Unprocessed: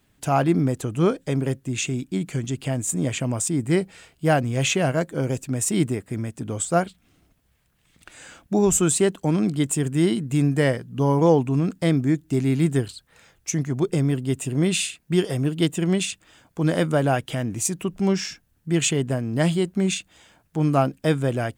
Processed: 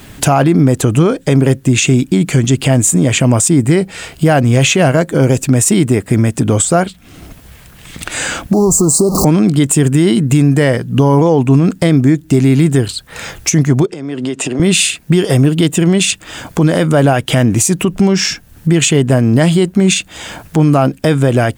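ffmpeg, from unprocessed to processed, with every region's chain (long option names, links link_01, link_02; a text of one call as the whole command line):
ffmpeg -i in.wav -filter_complex "[0:a]asettb=1/sr,asplit=3[link_01][link_02][link_03];[link_01]atrim=end=8.534[link_04];[link_02]atrim=start=8.53:end=9.25,asetpts=PTS-STARTPTS,afade=type=in:duration=0.004:curve=qsin,afade=type=out:start_time=0.716:duration=0.004:curve=qsin,aeval=exprs='val(0)+0.5*0.0501*sgn(val(0))':channel_layout=same,acompressor=threshold=-25dB:ratio=4:attack=3.2:release=140:knee=1:detection=peak,asuperstop=centerf=2300:order=20:qfactor=0.78[link_05];[link_03]atrim=start=9.246[link_06];[link_04][link_05]acrossfade=duration=0.004:curve1=hsin:curve2=qsin[link_07];[link_07][link_06]acrossfade=duration=0.004:curve1=qsin:curve2=hsin,asettb=1/sr,asplit=3[link_08][link_09][link_10];[link_08]atrim=end=13.864[link_11];[link_09]atrim=start=13.86:end=14.6,asetpts=PTS-STARTPTS,afade=type=in:duration=0.004:curve=qsin,afade=type=out:start_time=0.736:duration=0.004:curve=qsin,acrossover=split=200 7200:gain=0.0708 1 0.0631[link_12][link_13][link_14];[link_12][link_13][link_14]amix=inputs=3:normalize=0,acompressor=threshold=-39dB:ratio=10:attack=3.2:release=140:knee=1:detection=peak[link_15];[link_10]atrim=start=14.596[link_16];[link_11][link_15]acrossfade=duration=0.004:curve1=hsin:curve2=qsin[link_17];[link_17][link_16]acrossfade=duration=0.004:curve1=qsin:curve2=hsin,acompressor=threshold=-46dB:ratio=2,alimiter=level_in=29.5dB:limit=-1dB:release=50:level=0:latency=1,volume=-1dB" out.wav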